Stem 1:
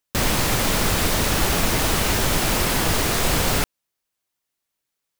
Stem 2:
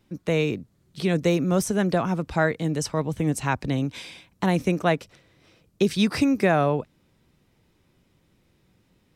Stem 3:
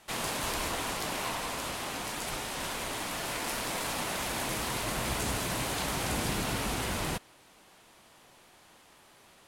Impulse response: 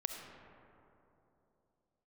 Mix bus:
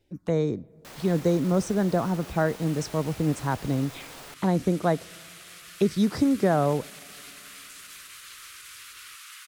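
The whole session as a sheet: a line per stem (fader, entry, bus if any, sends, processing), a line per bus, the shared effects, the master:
-11.5 dB, 0.70 s, bus A, no send, none
-1.5 dB, 0.00 s, no bus, send -22 dB, touch-sensitive phaser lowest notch 190 Hz, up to 2.7 kHz, full sweep at -23 dBFS
-12.5 dB, 2.50 s, bus A, send -6.5 dB, elliptic high-pass 1.2 kHz, stop band 40 dB; tilt EQ +2 dB/octave
bus A: 0.0 dB, tone controls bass -14 dB, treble +3 dB; peak limiter -32.5 dBFS, peak gain reduction 12.5 dB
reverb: on, RT60 3.1 s, pre-delay 25 ms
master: treble shelf 3.9 kHz -6.5 dB

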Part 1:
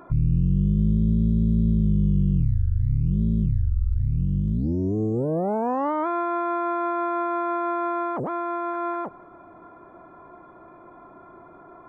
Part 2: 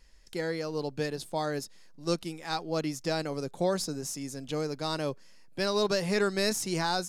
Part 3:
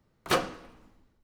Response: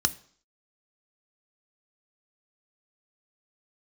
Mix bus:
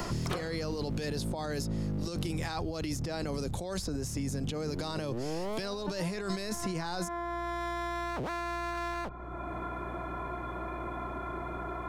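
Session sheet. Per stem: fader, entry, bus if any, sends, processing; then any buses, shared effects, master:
-11.5 dB, 0.00 s, bus A, no send, low-pass that closes with the level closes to 410 Hz, closed at -18 dBFS; one-sided clip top -33 dBFS, bottom -16 dBFS
+2.5 dB, 0.00 s, bus A, no send, none
-7.0 dB, 0.00 s, no bus, no send, low-pass 1.3 kHz 6 dB/octave; upward compressor, threshold -32 dBFS
bus A: 0.0 dB, compressor with a negative ratio -33 dBFS, ratio -1; peak limiter -24.5 dBFS, peak gain reduction 8.5 dB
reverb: none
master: hum 60 Hz, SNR 26 dB; three bands compressed up and down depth 100%

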